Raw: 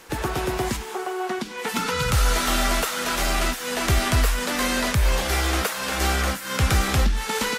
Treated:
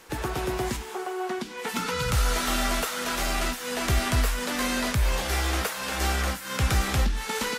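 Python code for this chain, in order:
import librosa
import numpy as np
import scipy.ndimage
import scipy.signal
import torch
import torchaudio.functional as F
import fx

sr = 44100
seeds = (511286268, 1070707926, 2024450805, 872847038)

y = fx.comb_fb(x, sr, f0_hz=61.0, decay_s=0.17, harmonics='all', damping=0.0, mix_pct=50)
y = y * 10.0 ** (-1.5 / 20.0)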